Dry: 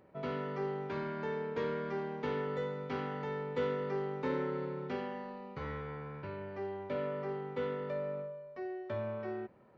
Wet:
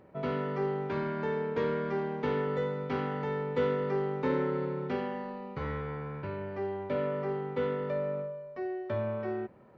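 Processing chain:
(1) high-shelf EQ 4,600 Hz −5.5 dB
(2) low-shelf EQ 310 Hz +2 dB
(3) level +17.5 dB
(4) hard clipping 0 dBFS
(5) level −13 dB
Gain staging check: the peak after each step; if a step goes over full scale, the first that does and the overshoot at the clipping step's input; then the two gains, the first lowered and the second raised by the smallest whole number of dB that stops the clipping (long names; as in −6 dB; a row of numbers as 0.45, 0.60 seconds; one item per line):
−23.5, −22.5, −5.0, −5.0, −18.0 dBFS
no step passes full scale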